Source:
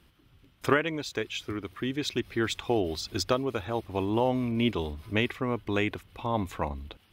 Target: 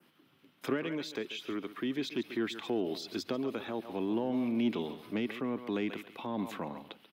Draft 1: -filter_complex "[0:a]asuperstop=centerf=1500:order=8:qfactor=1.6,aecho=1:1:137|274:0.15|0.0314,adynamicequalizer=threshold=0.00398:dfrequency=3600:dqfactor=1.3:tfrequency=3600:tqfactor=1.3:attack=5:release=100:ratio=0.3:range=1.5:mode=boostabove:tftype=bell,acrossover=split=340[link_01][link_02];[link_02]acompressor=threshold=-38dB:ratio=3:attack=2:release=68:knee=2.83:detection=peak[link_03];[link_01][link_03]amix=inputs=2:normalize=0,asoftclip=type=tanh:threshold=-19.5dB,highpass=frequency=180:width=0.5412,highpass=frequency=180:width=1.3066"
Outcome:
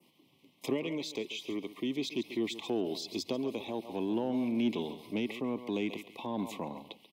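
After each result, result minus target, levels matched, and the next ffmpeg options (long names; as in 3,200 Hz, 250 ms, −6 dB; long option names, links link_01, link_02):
8,000 Hz band +4.5 dB; 2,000 Hz band −2.5 dB
-filter_complex "[0:a]asuperstop=centerf=1500:order=8:qfactor=1.6,aecho=1:1:137|274:0.15|0.0314,adynamicequalizer=threshold=0.00398:dfrequency=3600:dqfactor=1.3:tfrequency=3600:tqfactor=1.3:attack=5:release=100:ratio=0.3:range=1.5:mode=boostabove:tftype=bell,acrossover=split=340[link_01][link_02];[link_02]acompressor=threshold=-38dB:ratio=3:attack=2:release=68:knee=2.83:detection=peak[link_03];[link_01][link_03]amix=inputs=2:normalize=0,asoftclip=type=tanh:threshold=-19.5dB,highpass=frequency=180:width=0.5412,highpass=frequency=180:width=1.3066,equalizer=frequency=7300:width_type=o:width=1.2:gain=-5"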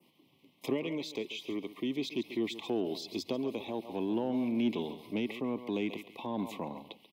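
2,000 Hz band −2.5 dB
-filter_complex "[0:a]aecho=1:1:137|274:0.15|0.0314,adynamicequalizer=threshold=0.00398:dfrequency=3600:dqfactor=1.3:tfrequency=3600:tqfactor=1.3:attack=5:release=100:ratio=0.3:range=1.5:mode=boostabove:tftype=bell,acrossover=split=340[link_01][link_02];[link_02]acompressor=threshold=-38dB:ratio=3:attack=2:release=68:knee=2.83:detection=peak[link_03];[link_01][link_03]amix=inputs=2:normalize=0,asoftclip=type=tanh:threshold=-19.5dB,highpass=frequency=180:width=0.5412,highpass=frequency=180:width=1.3066,equalizer=frequency=7300:width_type=o:width=1.2:gain=-5"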